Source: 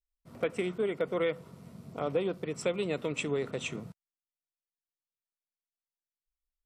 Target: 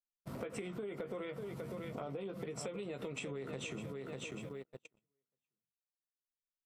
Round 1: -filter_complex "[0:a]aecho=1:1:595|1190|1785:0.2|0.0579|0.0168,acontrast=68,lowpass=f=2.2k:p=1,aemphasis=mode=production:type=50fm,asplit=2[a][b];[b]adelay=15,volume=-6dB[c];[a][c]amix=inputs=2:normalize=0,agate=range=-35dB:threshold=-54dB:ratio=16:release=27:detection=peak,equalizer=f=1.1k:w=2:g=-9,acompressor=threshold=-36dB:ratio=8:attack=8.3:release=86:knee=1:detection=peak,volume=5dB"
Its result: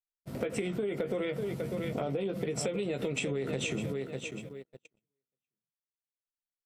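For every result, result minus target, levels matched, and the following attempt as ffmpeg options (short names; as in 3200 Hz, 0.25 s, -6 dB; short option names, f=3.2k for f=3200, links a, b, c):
compressor: peak gain reduction -10.5 dB; 1000 Hz band -3.5 dB
-filter_complex "[0:a]aecho=1:1:595|1190|1785:0.2|0.0579|0.0168,acontrast=68,lowpass=f=2.2k:p=1,aemphasis=mode=production:type=50fm,asplit=2[a][b];[b]adelay=15,volume=-6dB[c];[a][c]amix=inputs=2:normalize=0,agate=range=-35dB:threshold=-54dB:ratio=16:release=27:detection=peak,equalizer=f=1.1k:w=2:g=-9,acompressor=threshold=-47dB:ratio=8:attack=8.3:release=86:knee=1:detection=peak,volume=5dB"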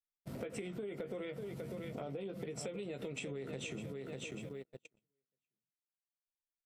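1000 Hz band -3.5 dB
-filter_complex "[0:a]aecho=1:1:595|1190|1785:0.2|0.0579|0.0168,acontrast=68,lowpass=f=2.2k:p=1,aemphasis=mode=production:type=50fm,asplit=2[a][b];[b]adelay=15,volume=-6dB[c];[a][c]amix=inputs=2:normalize=0,agate=range=-35dB:threshold=-54dB:ratio=16:release=27:detection=peak,acompressor=threshold=-47dB:ratio=8:attack=8.3:release=86:knee=1:detection=peak,volume=5dB"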